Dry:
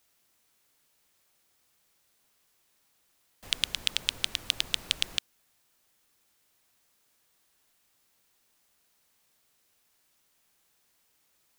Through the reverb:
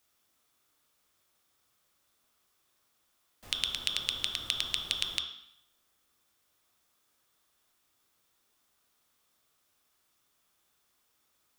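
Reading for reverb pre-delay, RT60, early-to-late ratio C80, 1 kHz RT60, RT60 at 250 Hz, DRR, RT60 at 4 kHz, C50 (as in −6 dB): 7 ms, 0.70 s, 9.0 dB, 0.75 s, 0.80 s, 1.5 dB, 0.75 s, 6.0 dB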